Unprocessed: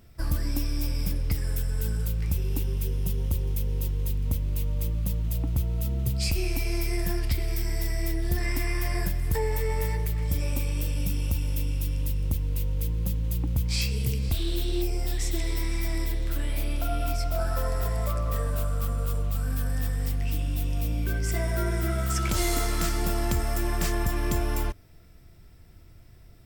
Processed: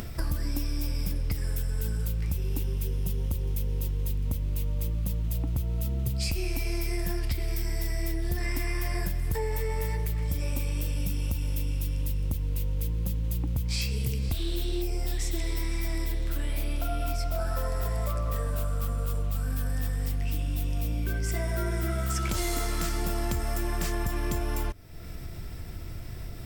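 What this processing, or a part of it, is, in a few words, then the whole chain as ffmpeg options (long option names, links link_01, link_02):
upward and downward compression: -af "acompressor=mode=upward:threshold=-33dB:ratio=2.5,acompressor=threshold=-31dB:ratio=6,volume=5.5dB"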